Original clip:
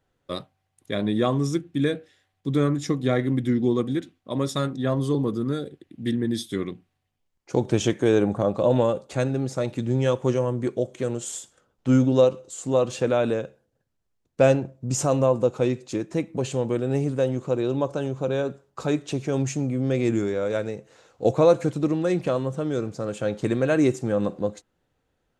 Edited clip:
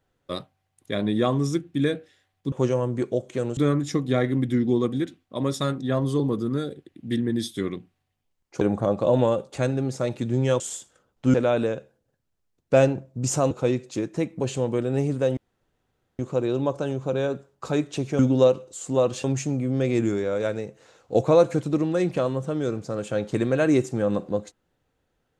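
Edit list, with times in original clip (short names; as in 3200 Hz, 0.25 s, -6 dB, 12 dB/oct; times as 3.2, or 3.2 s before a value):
7.56–8.18 cut
10.17–11.22 move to 2.52
11.96–13.01 move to 19.34
15.18–15.48 cut
17.34 insert room tone 0.82 s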